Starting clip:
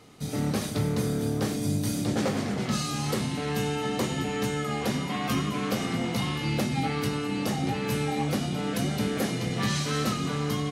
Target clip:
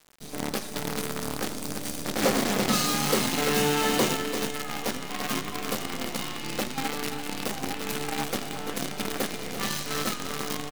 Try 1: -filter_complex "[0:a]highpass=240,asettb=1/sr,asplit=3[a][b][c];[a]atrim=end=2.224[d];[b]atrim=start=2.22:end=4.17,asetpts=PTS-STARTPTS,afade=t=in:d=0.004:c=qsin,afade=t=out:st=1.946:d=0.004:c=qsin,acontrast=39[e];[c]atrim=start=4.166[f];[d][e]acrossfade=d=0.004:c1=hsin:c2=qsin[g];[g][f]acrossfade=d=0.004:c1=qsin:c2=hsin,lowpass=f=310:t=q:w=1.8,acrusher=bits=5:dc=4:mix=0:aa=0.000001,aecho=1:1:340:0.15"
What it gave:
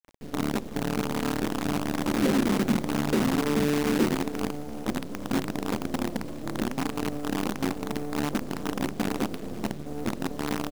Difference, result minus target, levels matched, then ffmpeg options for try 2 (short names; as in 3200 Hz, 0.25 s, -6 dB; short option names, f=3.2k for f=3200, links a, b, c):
250 Hz band +5.5 dB; echo-to-direct -7 dB
-filter_complex "[0:a]highpass=240,asettb=1/sr,asplit=3[a][b][c];[a]atrim=end=2.224[d];[b]atrim=start=2.22:end=4.17,asetpts=PTS-STARTPTS,afade=t=in:d=0.004:c=qsin,afade=t=out:st=1.946:d=0.004:c=qsin,acontrast=39[e];[c]atrim=start=4.166[f];[d][e]acrossfade=d=0.004:c1=hsin:c2=qsin[g];[g][f]acrossfade=d=0.004:c1=qsin:c2=hsin,acrusher=bits=5:dc=4:mix=0:aa=0.000001,aecho=1:1:340:0.335"